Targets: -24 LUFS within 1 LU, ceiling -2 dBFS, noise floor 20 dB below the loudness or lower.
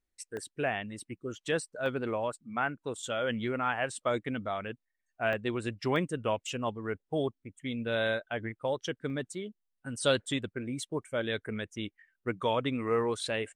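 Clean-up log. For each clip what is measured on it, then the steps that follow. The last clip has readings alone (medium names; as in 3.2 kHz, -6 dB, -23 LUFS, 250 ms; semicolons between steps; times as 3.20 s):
dropouts 5; longest dropout 1.1 ms; loudness -33.5 LUFS; peak level -14.5 dBFS; loudness target -24.0 LUFS
-> interpolate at 0.37/1.86/5.33/5.96/9.10 s, 1.1 ms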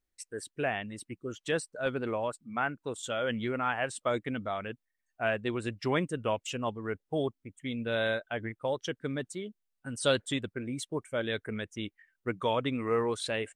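dropouts 0; loudness -33.5 LUFS; peak level -14.5 dBFS; loudness target -24.0 LUFS
-> trim +9.5 dB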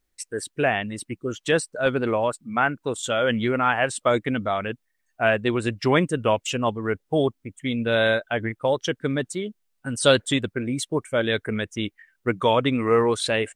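loudness -24.0 LUFS; peak level -5.0 dBFS; noise floor -74 dBFS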